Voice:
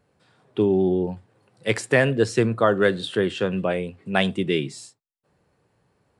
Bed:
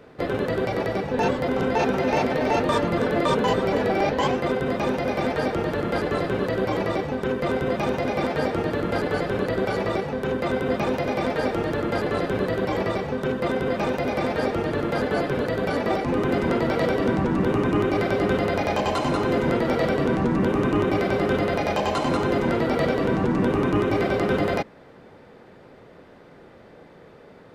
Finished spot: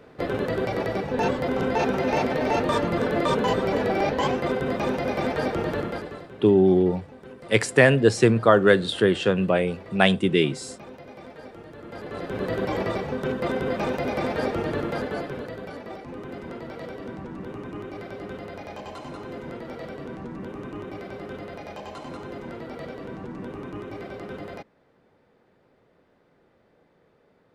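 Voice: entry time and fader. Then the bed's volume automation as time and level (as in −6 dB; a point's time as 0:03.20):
5.85 s, +2.5 dB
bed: 0:05.79 −1.5 dB
0:06.29 −18.5 dB
0:11.72 −18.5 dB
0:12.53 −2 dB
0:14.77 −2 dB
0:15.84 −14.5 dB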